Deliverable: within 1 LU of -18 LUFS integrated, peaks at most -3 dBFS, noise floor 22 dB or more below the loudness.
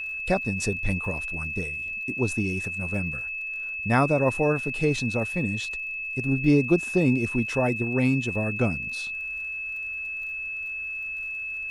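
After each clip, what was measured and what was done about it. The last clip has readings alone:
tick rate 47 per s; steady tone 2.6 kHz; tone level -30 dBFS; loudness -26.0 LUFS; peak level -9.0 dBFS; loudness target -18.0 LUFS
-> de-click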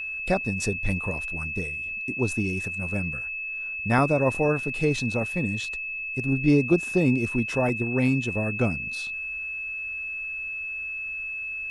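tick rate 0.17 per s; steady tone 2.6 kHz; tone level -30 dBFS
-> band-stop 2.6 kHz, Q 30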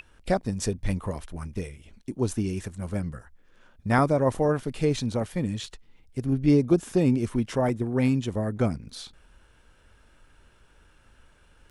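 steady tone not found; loudness -26.5 LUFS; peak level -9.5 dBFS; loudness target -18.0 LUFS
-> trim +8.5 dB; peak limiter -3 dBFS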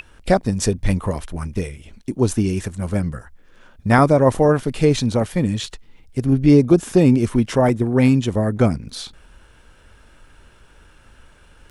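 loudness -18.5 LUFS; peak level -3.0 dBFS; noise floor -51 dBFS

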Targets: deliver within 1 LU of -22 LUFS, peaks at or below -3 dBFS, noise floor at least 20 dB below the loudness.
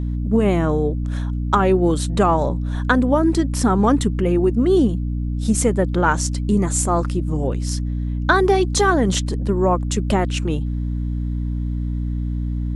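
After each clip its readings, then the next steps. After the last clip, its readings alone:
hum 60 Hz; highest harmonic 300 Hz; hum level -20 dBFS; loudness -19.5 LUFS; peak level -2.0 dBFS; loudness target -22.0 LUFS
-> hum notches 60/120/180/240/300 Hz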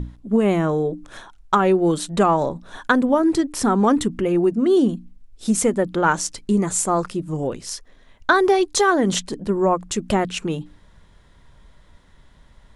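hum not found; loudness -20.0 LUFS; peak level -2.0 dBFS; loudness target -22.0 LUFS
-> trim -2 dB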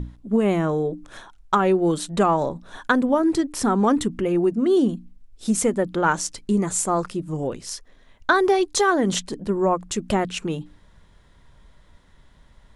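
loudness -22.0 LUFS; peak level -4.0 dBFS; noise floor -54 dBFS

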